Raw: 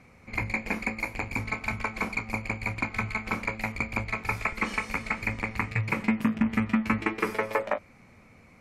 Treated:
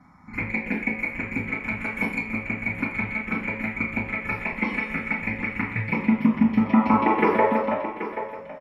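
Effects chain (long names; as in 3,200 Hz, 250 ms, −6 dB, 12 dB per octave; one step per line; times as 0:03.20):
0:01.81–0:02.27: parametric band 11,000 Hz +14.5 dB 1.2 octaves
phaser swept by the level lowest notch 450 Hz, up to 1,900 Hz, full sweep at −22 dBFS
0:06.65–0:07.43: parametric band 780 Hz +13.5 dB 2.2 octaves
single-tap delay 780 ms −12 dB
convolution reverb RT60 0.60 s, pre-delay 3 ms, DRR −5.5 dB
boost into a limiter +3 dB
level −7 dB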